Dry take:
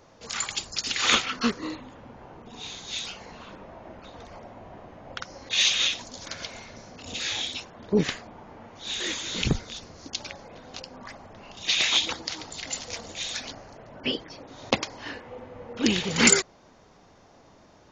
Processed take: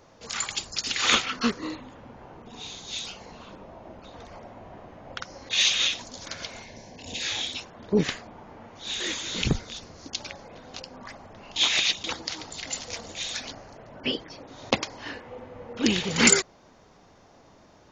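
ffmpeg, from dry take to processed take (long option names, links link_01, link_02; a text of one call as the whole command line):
ffmpeg -i in.wav -filter_complex "[0:a]asettb=1/sr,asplit=3[link_01][link_02][link_03];[link_01]atrim=end=2.634[link_04];[link_02]atrim=start=2.63:end=4.11,asetpts=PTS-STARTPTS,afade=type=in:duration=0.004:curve=qsin,afade=type=out:start_time=1.476:duration=0.004:curve=qsin,equalizer=frequency=1800:width_type=o:width=1.1:gain=-4.5[link_05];[link_03]atrim=start=4.106[link_06];[link_04][link_05]acrossfade=duration=0.004:curve1=hsin:curve2=qsin[link_07];[link_07][link_06]acrossfade=duration=0.004:curve1=qsin:curve2=hsin,asettb=1/sr,asplit=3[link_08][link_09][link_10];[link_08]atrim=end=6.634[link_11];[link_09]atrim=start=6.63:end=7.23,asetpts=PTS-STARTPTS,afade=type=in:duration=0.004:curve=qsin,afade=type=out:start_time=0.596:duration=0.004:curve=qsin,asuperstop=centerf=1300:order=4:qfactor=2.5[link_12];[link_10]atrim=start=7.226[link_13];[link_11][link_12]acrossfade=duration=0.004:curve1=hsin:curve2=qsin[link_14];[link_14][link_13]acrossfade=duration=0.004:curve1=qsin:curve2=hsin,asplit=3[link_15][link_16][link_17];[link_15]atrim=end=11.562[link_18];[link_16]atrim=start=11.558:end=12.042,asetpts=PTS-STARTPTS,areverse[link_19];[link_17]atrim=start=12.038[link_20];[link_18][link_19]acrossfade=duration=0.004:curve1=hsin:curve2=hsin[link_21];[link_21][link_20]acrossfade=duration=0.004:curve1=hsin:curve2=hsin" out.wav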